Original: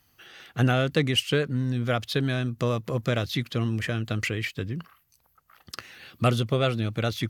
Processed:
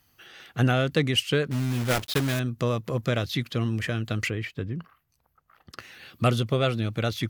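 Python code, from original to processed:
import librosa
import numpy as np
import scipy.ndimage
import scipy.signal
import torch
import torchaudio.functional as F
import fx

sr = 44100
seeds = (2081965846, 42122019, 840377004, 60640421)

y = fx.block_float(x, sr, bits=3, at=(1.51, 2.41))
y = fx.high_shelf(y, sr, hz=2800.0, db=-12.0, at=(4.3, 5.79))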